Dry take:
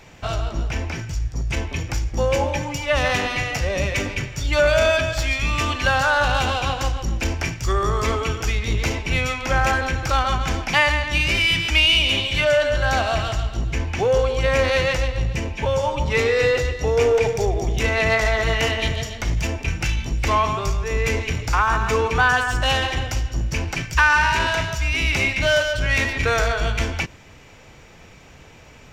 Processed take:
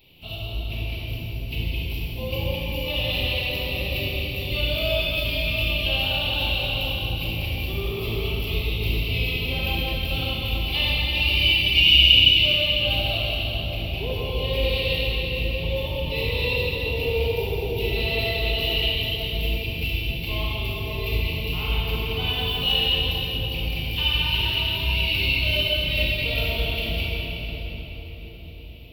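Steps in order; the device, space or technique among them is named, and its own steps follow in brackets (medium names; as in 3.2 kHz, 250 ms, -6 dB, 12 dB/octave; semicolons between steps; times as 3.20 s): shimmer-style reverb (harmony voices +12 st -11 dB; reverberation RT60 5.0 s, pre-delay 25 ms, DRR -6.5 dB); FFT filter 120 Hz 0 dB, 200 Hz -3 dB, 360 Hz +1 dB, 1 kHz -11 dB, 1.6 kHz -23 dB, 2.8 kHz +11 dB, 4.2 kHz +5 dB, 6.5 kHz -22 dB, 14 kHz +15 dB; trim -12 dB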